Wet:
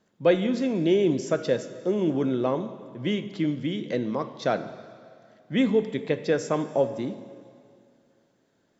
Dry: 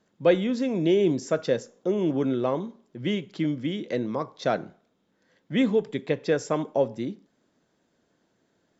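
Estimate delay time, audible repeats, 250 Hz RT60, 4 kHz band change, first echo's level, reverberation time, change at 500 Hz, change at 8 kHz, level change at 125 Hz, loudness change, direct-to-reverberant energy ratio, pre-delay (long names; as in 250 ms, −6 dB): no echo audible, no echo audible, 2.4 s, +0.5 dB, no echo audible, 2.3 s, 0.0 dB, can't be measured, +0.5 dB, 0.0 dB, 11.5 dB, 6 ms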